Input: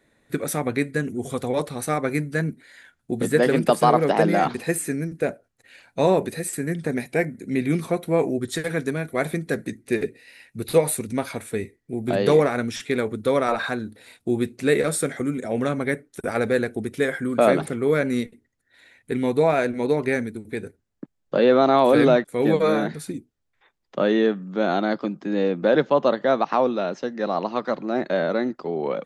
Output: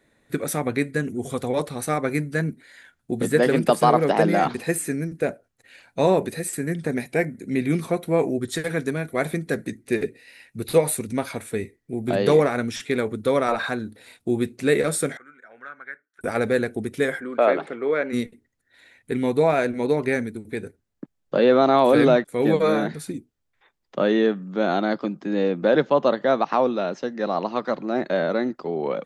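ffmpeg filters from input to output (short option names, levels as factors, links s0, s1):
-filter_complex "[0:a]asettb=1/sr,asplit=3[s0][s1][s2];[s0]atrim=end=15.174[s3];[s1]atrim=start=15.17:end=16.21,asetpts=PTS-STARTPTS,afade=t=in:d=0.004:c=qsin,afade=t=out:st=1.036:d=0.004:c=qsin,bandpass=f=1500:t=q:w=6.5[s4];[s2]atrim=start=16.206[s5];[s3][s4]acrossfade=d=0.004:c1=hsin:c2=qsin[s6];[s6][s5]acrossfade=d=0.004:c1=qsin:c2=hsin,asplit=3[s7][s8][s9];[s7]afade=t=out:st=17.19:d=0.02[s10];[s8]highpass=390,lowpass=2900,afade=t=in:st=17.19:d=0.02,afade=t=out:st=18.12:d=0.02[s11];[s9]afade=t=in:st=18.12:d=0.02[s12];[s10][s11][s12]amix=inputs=3:normalize=0"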